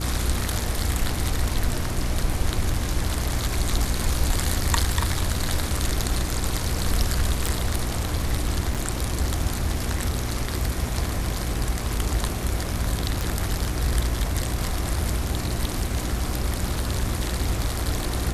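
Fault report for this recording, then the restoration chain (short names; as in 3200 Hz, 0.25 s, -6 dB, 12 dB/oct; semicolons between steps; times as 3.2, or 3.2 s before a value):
hum 60 Hz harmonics 6 -29 dBFS
7.47 pop
8.74–8.75 gap 6.7 ms
13.21 pop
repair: de-click; de-hum 60 Hz, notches 6; interpolate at 8.74, 6.7 ms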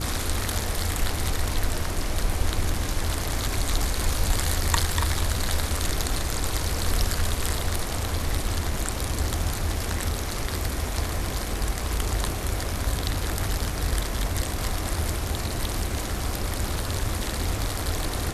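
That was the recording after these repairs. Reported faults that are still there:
7.47 pop
13.21 pop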